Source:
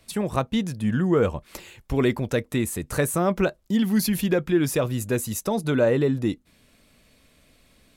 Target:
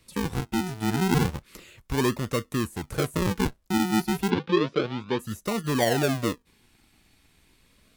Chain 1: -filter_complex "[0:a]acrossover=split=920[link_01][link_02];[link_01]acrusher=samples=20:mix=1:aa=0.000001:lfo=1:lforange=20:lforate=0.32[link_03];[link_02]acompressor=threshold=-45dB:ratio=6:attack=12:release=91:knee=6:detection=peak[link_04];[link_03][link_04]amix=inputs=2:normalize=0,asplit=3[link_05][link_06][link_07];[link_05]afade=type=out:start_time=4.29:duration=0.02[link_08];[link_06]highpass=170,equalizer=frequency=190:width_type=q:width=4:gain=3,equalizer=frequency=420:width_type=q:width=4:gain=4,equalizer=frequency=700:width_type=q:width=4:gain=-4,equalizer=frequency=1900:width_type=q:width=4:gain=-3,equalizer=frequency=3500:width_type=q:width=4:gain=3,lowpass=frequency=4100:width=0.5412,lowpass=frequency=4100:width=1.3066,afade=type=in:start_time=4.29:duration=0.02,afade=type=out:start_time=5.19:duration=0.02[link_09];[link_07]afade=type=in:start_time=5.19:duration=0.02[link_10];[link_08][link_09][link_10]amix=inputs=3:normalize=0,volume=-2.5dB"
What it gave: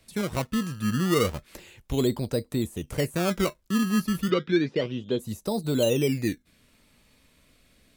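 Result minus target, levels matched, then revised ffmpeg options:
sample-and-hold swept by an LFO: distortion −12 dB
-filter_complex "[0:a]acrossover=split=920[link_01][link_02];[link_01]acrusher=samples=54:mix=1:aa=0.000001:lfo=1:lforange=54:lforate=0.32[link_03];[link_02]acompressor=threshold=-45dB:ratio=6:attack=12:release=91:knee=6:detection=peak[link_04];[link_03][link_04]amix=inputs=2:normalize=0,asplit=3[link_05][link_06][link_07];[link_05]afade=type=out:start_time=4.29:duration=0.02[link_08];[link_06]highpass=170,equalizer=frequency=190:width_type=q:width=4:gain=3,equalizer=frequency=420:width_type=q:width=4:gain=4,equalizer=frequency=700:width_type=q:width=4:gain=-4,equalizer=frequency=1900:width_type=q:width=4:gain=-3,equalizer=frequency=3500:width_type=q:width=4:gain=3,lowpass=frequency=4100:width=0.5412,lowpass=frequency=4100:width=1.3066,afade=type=in:start_time=4.29:duration=0.02,afade=type=out:start_time=5.19:duration=0.02[link_09];[link_07]afade=type=in:start_time=5.19:duration=0.02[link_10];[link_08][link_09][link_10]amix=inputs=3:normalize=0,volume=-2.5dB"

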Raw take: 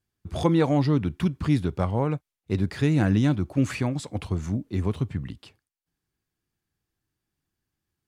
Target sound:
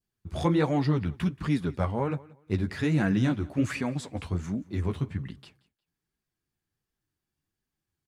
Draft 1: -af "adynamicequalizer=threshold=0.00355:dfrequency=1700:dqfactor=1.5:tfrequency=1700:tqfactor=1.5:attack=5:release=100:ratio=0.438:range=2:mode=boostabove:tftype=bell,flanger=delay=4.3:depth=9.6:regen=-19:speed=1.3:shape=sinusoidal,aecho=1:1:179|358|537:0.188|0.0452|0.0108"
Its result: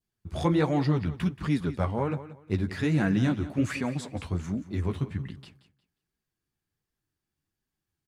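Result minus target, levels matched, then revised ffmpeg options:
echo-to-direct +7.5 dB
-af "adynamicequalizer=threshold=0.00355:dfrequency=1700:dqfactor=1.5:tfrequency=1700:tqfactor=1.5:attack=5:release=100:ratio=0.438:range=2:mode=boostabove:tftype=bell,flanger=delay=4.3:depth=9.6:regen=-19:speed=1.3:shape=sinusoidal,aecho=1:1:179|358:0.0794|0.0191"

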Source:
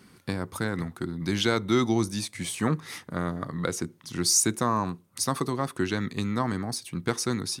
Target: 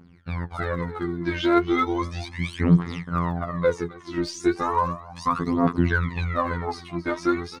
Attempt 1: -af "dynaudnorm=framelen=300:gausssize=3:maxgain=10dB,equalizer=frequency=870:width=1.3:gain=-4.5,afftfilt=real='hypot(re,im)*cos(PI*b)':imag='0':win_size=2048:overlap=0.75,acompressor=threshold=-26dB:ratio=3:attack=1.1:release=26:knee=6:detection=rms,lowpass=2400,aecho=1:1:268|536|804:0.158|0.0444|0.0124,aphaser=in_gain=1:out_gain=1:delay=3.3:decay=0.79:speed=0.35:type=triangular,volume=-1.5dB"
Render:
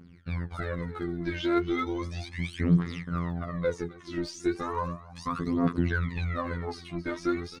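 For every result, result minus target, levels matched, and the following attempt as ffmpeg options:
downward compressor: peak gain reduction +6.5 dB; 1,000 Hz band −3.5 dB
-af "dynaudnorm=framelen=300:gausssize=3:maxgain=10dB,equalizer=frequency=870:width=1.3:gain=-4.5,afftfilt=real='hypot(re,im)*cos(PI*b)':imag='0':win_size=2048:overlap=0.75,acompressor=threshold=-16dB:ratio=3:attack=1.1:release=26:knee=6:detection=rms,lowpass=2400,aecho=1:1:268|536|804:0.158|0.0444|0.0124,aphaser=in_gain=1:out_gain=1:delay=3.3:decay=0.79:speed=0.35:type=triangular,volume=-1.5dB"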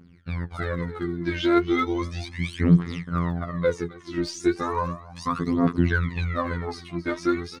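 1,000 Hz band −3.5 dB
-af "dynaudnorm=framelen=300:gausssize=3:maxgain=10dB,equalizer=frequency=870:width=1.3:gain=3,afftfilt=real='hypot(re,im)*cos(PI*b)':imag='0':win_size=2048:overlap=0.75,acompressor=threshold=-16dB:ratio=3:attack=1.1:release=26:knee=6:detection=rms,lowpass=2400,aecho=1:1:268|536|804:0.158|0.0444|0.0124,aphaser=in_gain=1:out_gain=1:delay=3.3:decay=0.79:speed=0.35:type=triangular,volume=-1.5dB"

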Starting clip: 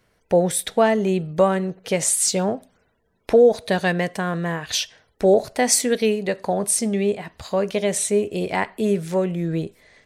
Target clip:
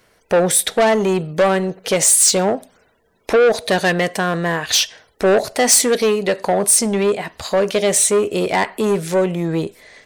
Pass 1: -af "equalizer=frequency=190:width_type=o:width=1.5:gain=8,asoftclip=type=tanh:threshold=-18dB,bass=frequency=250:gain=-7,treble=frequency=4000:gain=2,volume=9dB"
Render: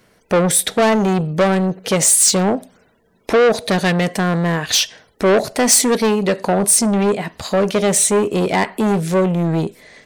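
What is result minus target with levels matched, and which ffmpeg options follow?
250 Hz band +4.0 dB
-af "asoftclip=type=tanh:threshold=-18dB,bass=frequency=250:gain=-7,treble=frequency=4000:gain=2,volume=9dB"

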